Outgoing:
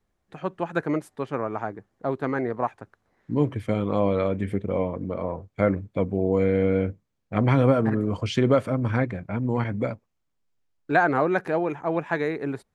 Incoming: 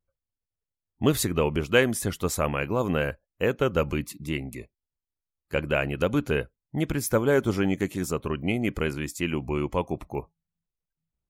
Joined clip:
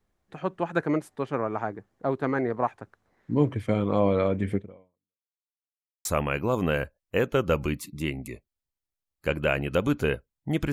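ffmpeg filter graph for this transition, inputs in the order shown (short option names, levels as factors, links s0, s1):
-filter_complex "[0:a]apad=whole_dur=10.72,atrim=end=10.72,asplit=2[s0][s1];[s0]atrim=end=5.33,asetpts=PTS-STARTPTS,afade=t=out:st=4.56:d=0.77:c=exp[s2];[s1]atrim=start=5.33:end=6.05,asetpts=PTS-STARTPTS,volume=0[s3];[1:a]atrim=start=2.32:end=6.99,asetpts=PTS-STARTPTS,afade=t=in:d=0.004:c=hsin[s4];[s2][s3][s4]concat=n=3:v=0:a=1"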